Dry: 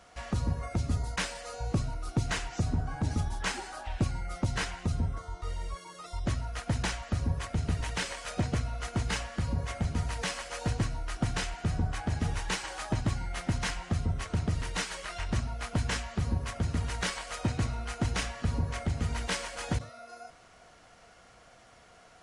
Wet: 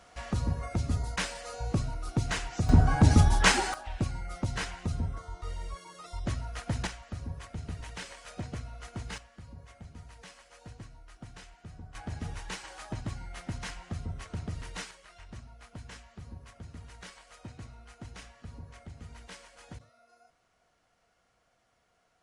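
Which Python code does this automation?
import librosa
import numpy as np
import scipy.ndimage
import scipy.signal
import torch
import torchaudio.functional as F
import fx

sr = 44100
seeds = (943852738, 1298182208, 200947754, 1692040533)

y = fx.gain(x, sr, db=fx.steps((0.0, 0.0), (2.69, 10.5), (3.74, -2.0), (6.87, -8.5), (9.18, -17.0), (11.95, -7.0), (14.91, -15.5)))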